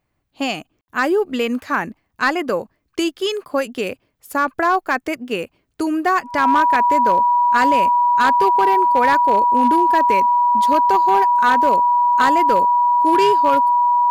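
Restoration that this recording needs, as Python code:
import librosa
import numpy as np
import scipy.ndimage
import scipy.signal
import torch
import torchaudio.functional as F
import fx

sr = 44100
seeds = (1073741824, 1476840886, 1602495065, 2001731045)

y = fx.fix_declip(x, sr, threshold_db=-8.5)
y = fx.notch(y, sr, hz=970.0, q=30.0)
y = fx.fix_ambience(y, sr, seeds[0], print_start_s=2.66, print_end_s=3.16, start_s=0.81, end_s=0.88)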